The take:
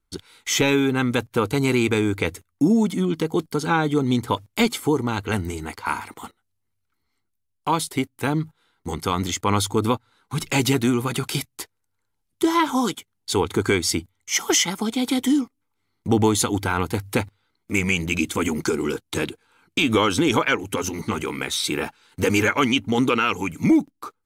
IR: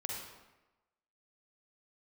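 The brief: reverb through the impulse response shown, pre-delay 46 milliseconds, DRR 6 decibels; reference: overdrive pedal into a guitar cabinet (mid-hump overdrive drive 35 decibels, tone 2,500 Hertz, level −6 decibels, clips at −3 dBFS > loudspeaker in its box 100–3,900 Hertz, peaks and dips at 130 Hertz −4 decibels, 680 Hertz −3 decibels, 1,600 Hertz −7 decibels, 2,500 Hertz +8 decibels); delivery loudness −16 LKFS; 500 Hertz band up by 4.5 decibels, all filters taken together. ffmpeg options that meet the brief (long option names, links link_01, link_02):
-filter_complex "[0:a]equalizer=frequency=500:width_type=o:gain=6,asplit=2[link_01][link_02];[1:a]atrim=start_sample=2205,adelay=46[link_03];[link_02][link_03]afir=irnorm=-1:irlink=0,volume=-7.5dB[link_04];[link_01][link_04]amix=inputs=2:normalize=0,asplit=2[link_05][link_06];[link_06]highpass=frequency=720:poles=1,volume=35dB,asoftclip=type=tanh:threshold=-3dB[link_07];[link_05][link_07]amix=inputs=2:normalize=0,lowpass=frequency=2500:poles=1,volume=-6dB,highpass=100,equalizer=frequency=130:width_type=q:width=4:gain=-4,equalizer=frequency=680:width_type=q:width=4:gain=-3,equalizer=frequency=1600:width_type=q:width=4:gain=-7,equalizer=frequency=2500:width_type=q:width=4:gain=8,lowpass=frequency=3900:width=0.5412,lowpass=frequency=3900:width=1.3066,volume=-5dB"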